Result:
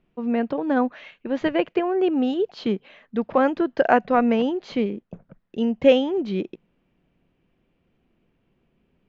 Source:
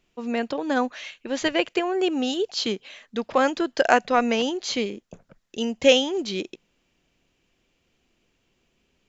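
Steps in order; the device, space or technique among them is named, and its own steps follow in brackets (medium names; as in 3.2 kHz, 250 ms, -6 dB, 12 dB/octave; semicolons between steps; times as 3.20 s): phone in a pocket (low-pass 3 kHz 12 dB/octave; peaking EQ 170 Hz +6 dB 1 oct; treble shelf 2.1 kHz -11 dB); trim +2 dB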